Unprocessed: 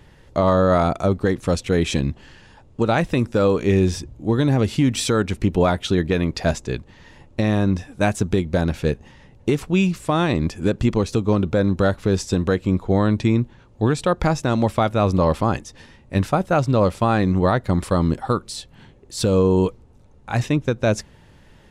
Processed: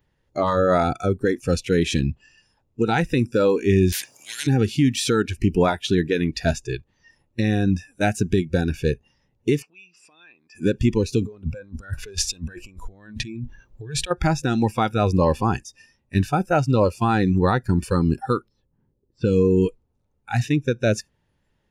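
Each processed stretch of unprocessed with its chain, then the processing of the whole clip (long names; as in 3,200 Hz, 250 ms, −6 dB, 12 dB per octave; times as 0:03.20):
0:03.92–0:04.47: Bessel high-pass filter 390 Hz, order 4 + every bin compressed towards the loudest bin 10 to 1
0:09.62–0:10.55: parametric band 580 Hz −8 dB 0.26 octaves + downward compressor 8 to 1, threshold −32 dBFS + band-pass filter 340–4,600 Hz
0:11.20–0:14.11: low-shelf EQ 66 Hz +3 dB + compressor whose output falls as the input rises −27 dBFS
0:18.48–0:19.67: parametric band 690 Hz −10 dB 0.33 octaves + low-pass that shuts in the quiet parts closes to 590 Hz, open at −13 dBFS
whole clip: notch filter 7,900 Hz, Q 13; noise reduction from a noise print of the clip's start 20 dB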